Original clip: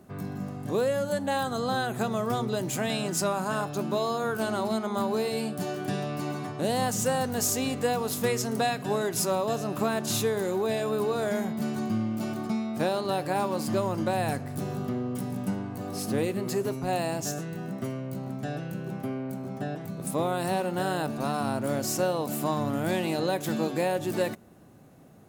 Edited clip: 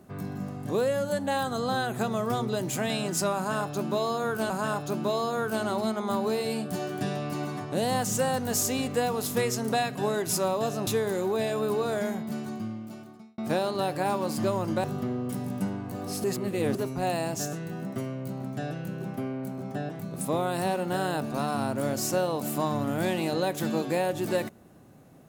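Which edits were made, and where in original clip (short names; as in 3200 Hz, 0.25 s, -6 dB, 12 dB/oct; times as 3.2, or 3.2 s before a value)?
3.37–4.5 loop, 2 plays
9.74–10.17 cut
11.15–12.68 fade out
14.14–14.7 cut
16.1–16.61 reverse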